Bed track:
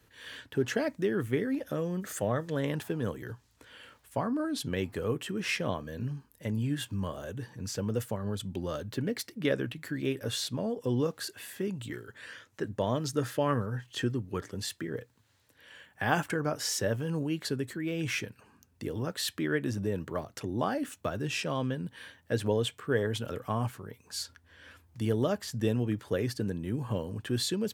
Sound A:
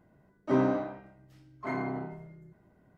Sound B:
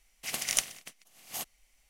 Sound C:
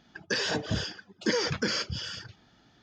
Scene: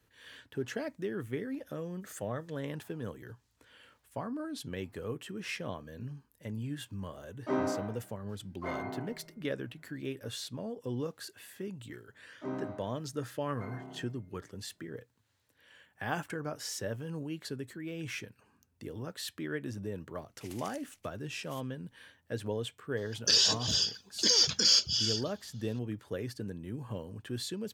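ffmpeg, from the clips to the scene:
-filter_complex "[1:a]asplit=2[a][b];[0:a]volume=-7dB[c];[a]equalizer=f=72:w=0.43:g=-12.5[d];[2:a]alimiter=limit=-15.5dB:level=0:latency=1:release=97[e];[3:a]aexciter=amount=6.3:drive=6.7:freq=3k[f];[d]atrim=end=2.97,asetpts=PTS-STARTPTS,volume=-2.5dB,afade=t=in:d=0.004:c=hsin,afade=t=out:st=2.966:d=0.004:c=hsin,adelay=6990[g];[b]atrim=end=2.97,asetpts=PTS-STARTPTS,volume=-12.5dB,afade=t=in:d=0.004:c=hsin,afade=t=out:st=2.966:d=0.004:c=hsin,adelay=11940[h];[e]atrim=end=1.89,asetpts=PTS-STARTPTS,volume=-17dB,afade=t=in:d=0.004:c=hsin,afade=t=out:st=1.886:d=0.004:c=hsin,adelay=20170[i];[f]atrim=end=2.82,asetpts=PTS-STARTPTS,volume=-8.5dB,afade=t=in:d=0.004:c=hsin,afade=t=out:st=2.816:d=0.004:c=hsin,adelay=22970[j];[c][g][h][i][j]amix=inputs=5:normalize=0"

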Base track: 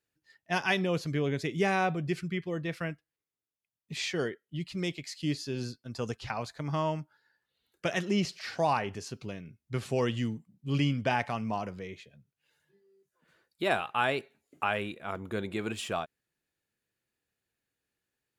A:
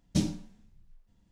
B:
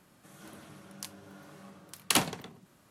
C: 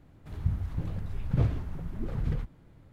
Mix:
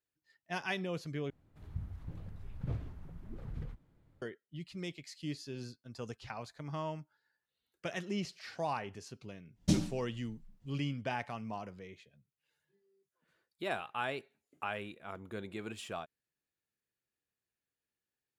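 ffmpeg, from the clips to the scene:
-filter_complex "[0:a]volume=-8.5dB,asplit=2[a][b];[a]atrim=end=1.304[c];[3:a]atrim=end=2.92,asetpts=PTS-STARTPTS,volume=-12dB[d];[b]atrim=start=4.216[e];[1:a]atrim=end=1.31,asetpts=PTS-STARTPTS,volume=-1.5dB,afade=t=in:d=0.1,afade=t=out:st=1.21:d=0.1,adelay=9530[f];[c][d]acrossfade=d=0.004:c1=hsin:c2=hsin[g];[g][e]acrossfade=d=0.004:c1=hsin:c2=hsin[h];[h][f]amix=inputs=2:normalize=0"

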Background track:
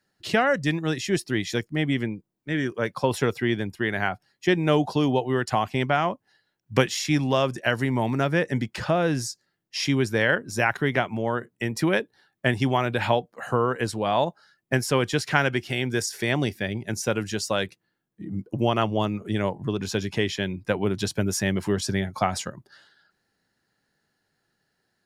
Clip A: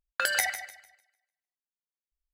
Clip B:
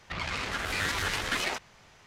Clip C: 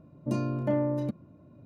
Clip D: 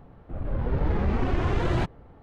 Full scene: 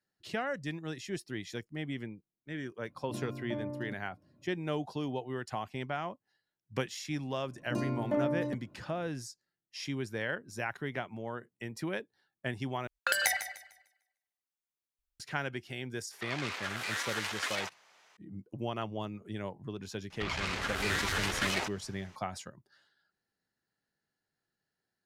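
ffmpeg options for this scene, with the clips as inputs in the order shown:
-filter_complex "[3:a]asplit=2[a][b];[2:a]asplit=2[c][d];[0:a]volume=-13.5dB[e];[b]equalizer=f=110:t=o:w=1.9:g=-6[f];[c]highpass=560[g];[e]asplit=2[h][i];[h]atrim=end=12.874[j];[1:a]atrim=end=2.33,asetpts=PTS-STARTPTS,volume=-2dB[k];[i]atrim=start=15.196[l];[a]atrim=end=1.65,asetpts=PTS-STARTPTS,volume=-11.5dB,afade=t=in:d=0.004:c=hsin,afade=t=out:st=1.646:d=0.004:c=hsin,adelay=2830[m];[f]atrim=end=1.65,asetpts=PTS-STARTPTS,volume=-2dB,afade=t=in:d=0.004:c=hsin,afade=t=out:st=1.646:d=0.004:c=hsin,adelay=7440[n];[g]atrim=end=2.06,asetpts=PTS-STARTPTS,volume=-5dB,afade=t=in:d=0.004:c=hsin,afade=t=out:st=2.056:d=0.004:c=hsin,adelay=16110[o];[d]atrim=end=2.06,asetpts=PTS-STARTPTS,volume=-2dB,afade=t=in:d=0.004:c=hsin,afade=t=out:st=2.056:d=0.004:c=hsin,adelay=20100[p];[j][k]acrossfade=d=0.004:c1=hsin:c2=hsin[q];[q][l]acrossfade=d=0.004:c1=hsin:c2=hsin[r];[r][m][n][o][p]amix=inputs=5:normalize=0"

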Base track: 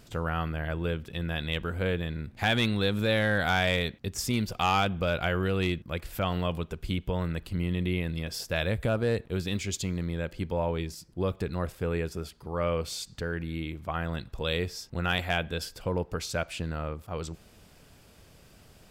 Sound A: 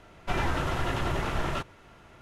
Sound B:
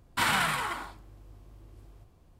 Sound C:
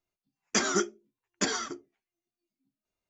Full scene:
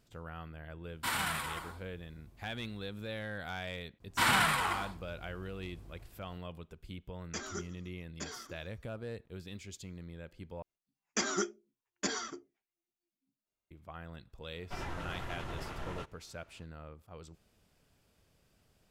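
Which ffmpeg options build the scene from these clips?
-filter_complex "[2:a]asplit=2[a][b];[3:a]asplit=2[c][d];[0:a]volume=-15dB[e];[a]highshelf=f=7.4k:g=7.5[f];[b]dynaudnorm=f=130:g=3:m=4dB[g];[c]asplit=4[h][i][j][k];[i]adelay=144,afreqshift=-64,volume=-21dB[l];[j]adelay=288,afreqshift=-128,volume=-27.4dB[m];[k]adelay=432,afreqshift=-192,volume=-33.8dB[n];[h][l][m][n]amix=inputs=4:normalize=0[o];[e]asplit=2[p][q];[p]atrim=end=10.624[r];[d]atrim=end=3.09,asetpts=PTS-STARTPTS,volume=-6dB[s];[q]atrim=start=13.706[t];[f]atrim=end=2.39,asetpts=PTS-STARTPTS,volume=-8.5dB,afade=t=in:d=0.004:c=hsin,afade=t=out:st=2.386:d=0.004:c=hsin,adelay=860[u];[g]atrim=end=2.39,asetpts=PTS-STARTPTS,volume=-4.5dB,afade=t=in:d=0.004:c=hsin,afade=t=out:st=2.386:d=0.004:c=hsin,adelay=4000[v];[o]atrim=end=3.09,asetpts=PTS-STARTPTS,volume=-14.5dB,afade=t=in:d=0.004:c=hsin,afade=t=out:st=3.086:d=0.004:c=hsin,adelay=6790[w];[1:a]atrim=end=2.21,asetpts=PTS-STARTPTS,volume=-12.5dB,afade=t=in:d=0.004:c=hsin,afade=t=out:st=2.206:d=0.004:c=hsin,adelay=14430[x];[r][s]acrossfade=d=0.004:c1=hsin:c2=hsin[y];[y][t]acrossfade=d=0.004:c1=hsin:c2=hsin[z];[z][u][v][w][x]amix=inputs=5:normalize=0"

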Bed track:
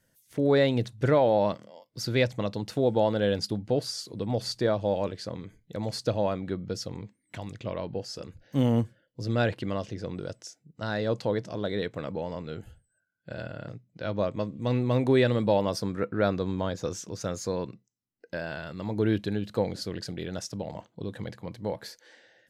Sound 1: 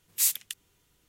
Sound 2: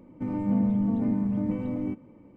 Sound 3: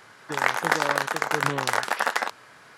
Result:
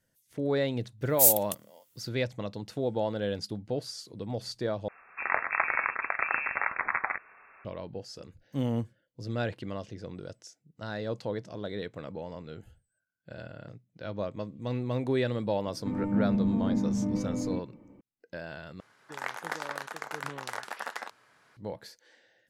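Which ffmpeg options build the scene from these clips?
-filter_complex "[3:a]asplit=2[a][b];[0:a]volume=-6dB[c];[1:a]aemphasis=mode=production:type=bsi[d];[a]lowpass=f=2.4k:t=q:w=0.5098,lowpass=f=2.4k:t=q:w=0.6013,lowpass=f=2.4k:t=q:w=0.9,lowpass=f=2.4k:t=q:w=2.563,afreqshift=-2800[e];[c]asplit=3[f][g][h];[f]atrim=end=4.884[i];[e]atrim=end=2.77,asetpts=PTS-STARTPTS,volume=-5dB[j];[g]atrim=start=7.646:end=18.804[k];[b]atrim=end=2.77,asetpts=PTS-STARTPTS,volume=-13dB[l];[h]atrim=start=21.566[m];[d]atrim=end=1.08,asetpts=PTS-STARTPTS,volume=-9dB,afade=t=in:d=0.004:c=hsin,afade=t=out:st=1.076:d=0.004:c=hsin,adelay=1010[n];[2:a]atrim=end=2.36,asetpts=PTS-STARTPTS,volume=-2dB,afade=t=in:d=0.004:c=hsin,afade=t=out:st=2.356:d=0.004:c=hsin,adelay=15650[o];[i][j]acrossfade=d=0.004:c1=hsin:c2=hsin[p];[p][k]acrossfade=d=0.004:c1=hsin:c2=hsin[q];[q][l]acrossfade=d=0.004:c1=hsin:c2=hsin[r];[r][m]acrossfade=d=0.004:c1=hsin:c2=hsin[s];[s][n][o]amix=inputs=3:normalize=0"

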